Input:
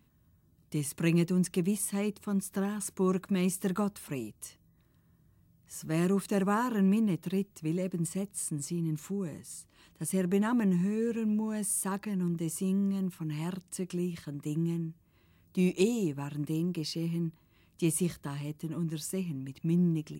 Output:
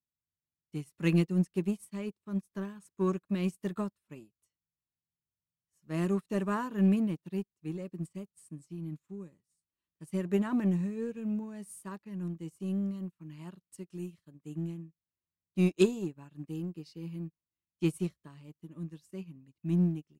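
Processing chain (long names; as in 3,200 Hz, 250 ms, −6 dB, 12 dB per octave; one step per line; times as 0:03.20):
high-shelf EQ 7,300 Hz −7 dB
notch filter 810 Hz, Q 17
0:13.70–0:14.32: parametric band 11,000 Hz +6.5 dB 1.7 octaves
in parallel at −9 dB: gain into a clipping stage and back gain 29.5 dB
on the sum: expander for the loud parts 2.5 to 1, over −48 dBFS
level +3 dB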